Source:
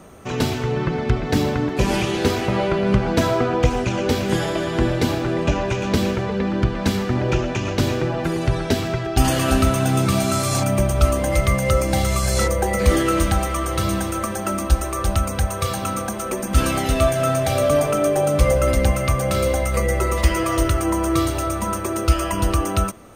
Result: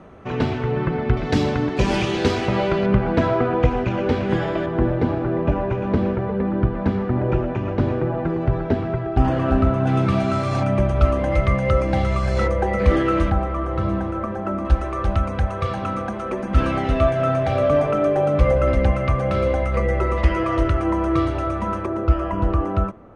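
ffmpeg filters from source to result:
ffmpeg -i in.wav -af "asetnsamples=nb_out_samples=441:pad=0,asendcmd='1.17 lowpass f 5400;2.86 lowpass f 2200;4.66 lowpass f 1300;9.87 lowpass f 2300;13.3 lowpass f 1300;14.65 lowpass f 2200;21.86 lowpass f 1300',lowpass=2400" out.wav

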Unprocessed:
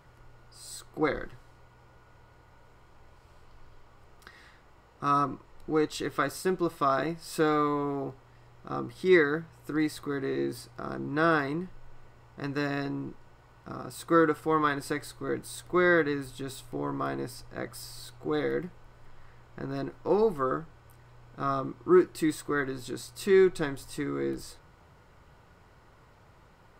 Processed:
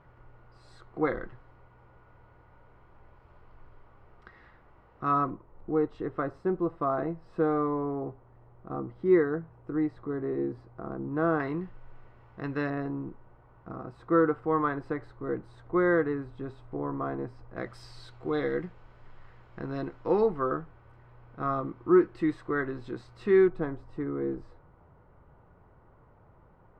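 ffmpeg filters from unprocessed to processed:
ffmpeg -i in.wav -af "asetnsamples=nb_out_samples=441:pad=0,asendcmd='5.3 lowpass f 1000;11.4 lowpass f 2400;12.7 lowpass f 1300;17.57 lowpass f 3500;20.26 lowpass f 2000;23.48 lowpass f 1100',lowpass=1900" out.wav

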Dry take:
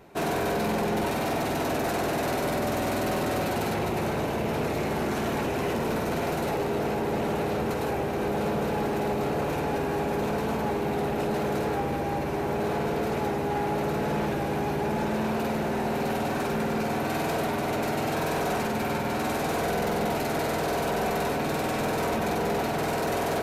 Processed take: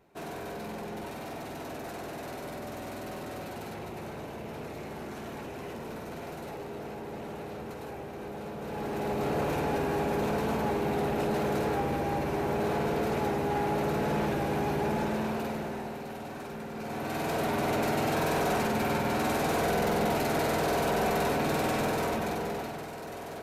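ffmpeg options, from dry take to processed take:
ffmpeg -i in.wav -af "volume=10dB,afade=type=in:start_time=8.58:duration=0.79:silence=0.298538,afade=type=out:start_time=14.87:duration=1.15:silence=0.298538,afade=type=in:start_time=16.73:duration=0.9:silence=0.266073,afade=type=out:start_time=21.69:duration=1.2:silence=0.237137" out.wav

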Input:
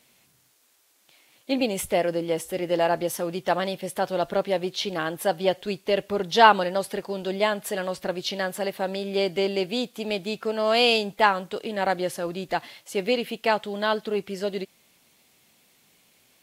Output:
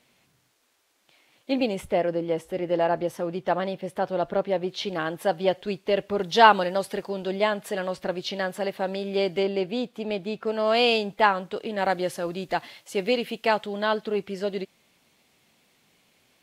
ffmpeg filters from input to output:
ffmpeg -i in.wav -af "asetnsamples=nb_out_samples=441:pad=0,asendcmd='1.75 lowpass f 1600;4.69 lowpass f 3300;6.19 lowpass f 7700;7.09 lowpass f 3900;9.43 lowpass f 1800;10.47 lowpass f 3500;11.78 lowpass f 8200;13.66 lowpass f 4200',lowpass=frequency=3500:poles=1" out.wav

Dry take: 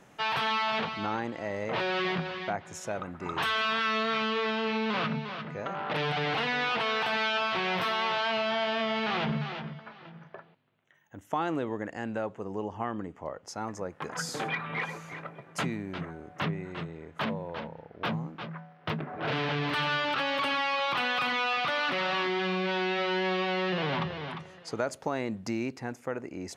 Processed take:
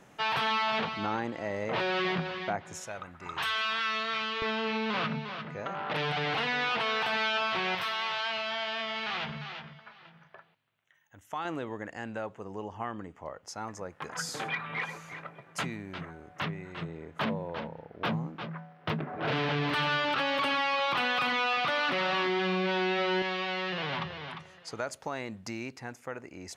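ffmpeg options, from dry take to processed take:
ffmpeg -i in.wav -af "asetnsamples=nb_out_samples=441:pad=0,asendcmd='2.84 equalizer g -11.5;4.42 equalizer g -2.5;7.75 equalizer g -13;11.45 equalizer g -5.5;16.82 equalizer g 1;23.22 equalizer g -7.5',equalizer=frequency=280:width_type=o:width=2.9:gain=0" out.wav

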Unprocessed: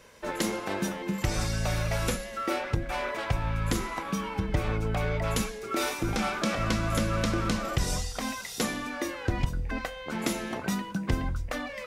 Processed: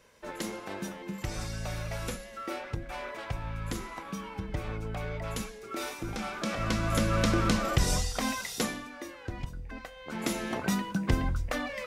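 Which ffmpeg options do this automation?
ffmpeg -i in.wav -af "volume=12.5dB,afade=type=in:start_time=6.28:duration=1.03:silence=0.354813,afade=type=out:start_time=8.42:duration=0.46:silence=0.266073,afade=type=in:start_time=9.9:duration=0.65:silence=0.298538" out.wav

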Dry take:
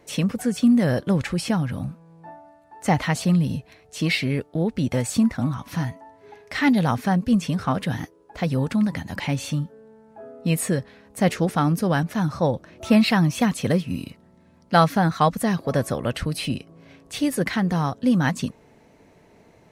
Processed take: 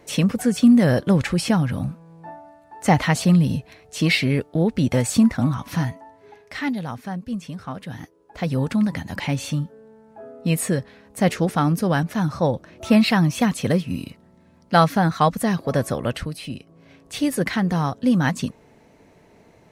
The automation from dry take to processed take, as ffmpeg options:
ffmpeg -i in.wav -af "volume=22dB,afade=type=out:start_time=5.71:duration=1.1:silence=0.237137,afade=type=in:start_time=7.86:duration=0.77:silence=0.316228,afade=type=out:start_time=16.09:duration=0.3:silence=0.375837,afade=type=in:start_time=16.39:duration=0.84:silence=0.375837" out.wav

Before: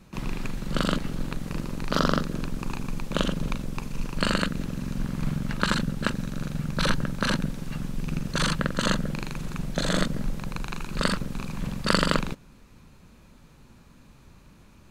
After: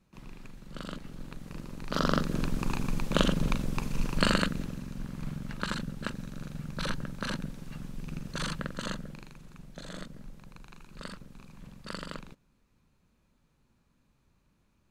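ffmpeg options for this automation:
ffmpeg -i in.wav -af "volume=0.5dB,afade=type=in:start_time=0.74:duration=1.11:silence=0.446684,afade=type=in:start_time=1.85:duration=0.56:silence=0.334965,afade=type=out:start_time=4.16:duration=0.71:silence=0.334965,afade=type=out:start_time=8.57:duration=0.83:silence=0.375837" out.wav

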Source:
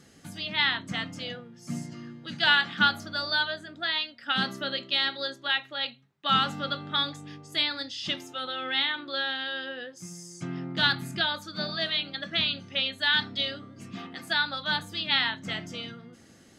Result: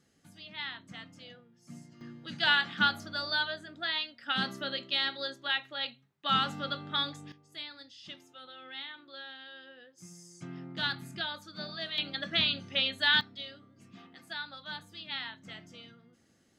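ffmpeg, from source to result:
ffmpeg -i in.wav -af "asetnsamples=nb_out_samples=441:pad=0,asendcmd='2.01 volume volume -4dB;7.32 volume volume -15.5dB;9.98 volume volume -8.5dB;11.98 volume volume -1dB;13.21 volume volume -13dB',volume=-14dB" out.wav

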